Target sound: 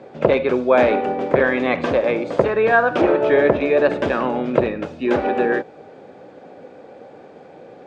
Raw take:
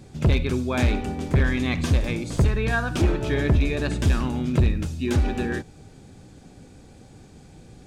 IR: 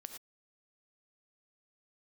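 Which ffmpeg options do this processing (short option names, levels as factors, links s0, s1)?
-filter_complex "[0:a]equalizer=f=540:w=1.5:g=14.5,acrossover=split=770[s0][s1];[s1]acontrast=68[s2];[s0][s2]amix=inputs=2:normalize=0,highpass=250,lowpass=2000,volume=1.33"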